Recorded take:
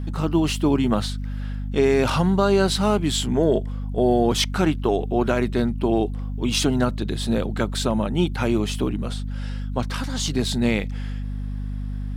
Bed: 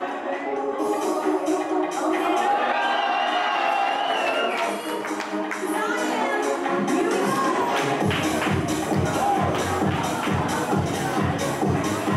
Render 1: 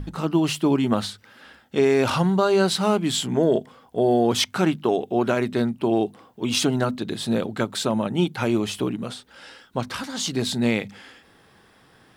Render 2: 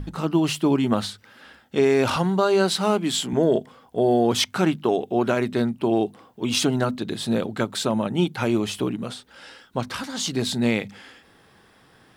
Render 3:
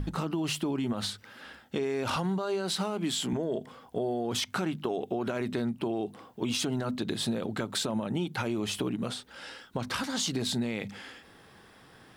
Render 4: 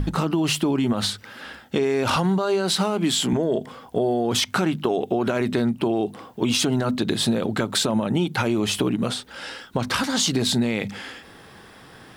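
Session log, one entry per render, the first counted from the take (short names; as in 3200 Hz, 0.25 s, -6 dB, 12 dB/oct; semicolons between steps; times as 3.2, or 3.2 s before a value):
notches 50/100/150/200/250 Hz
2.16–3.33 HPF 170 Hz
limiter -17 dBFS, peak gain reduction 10.5 dB; compressor, threshold -27 dBFS, peak gain reduction 6.5 dB
gain +9 dB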